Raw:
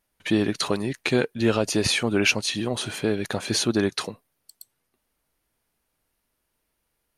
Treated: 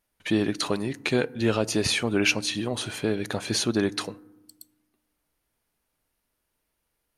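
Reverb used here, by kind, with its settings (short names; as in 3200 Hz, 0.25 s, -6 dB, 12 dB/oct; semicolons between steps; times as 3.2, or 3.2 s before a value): FDN reverb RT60 0.99 s, low-frequency decay 1.6×, high-frequency decay 0.4×, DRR 19.5 dB; gain -2 dB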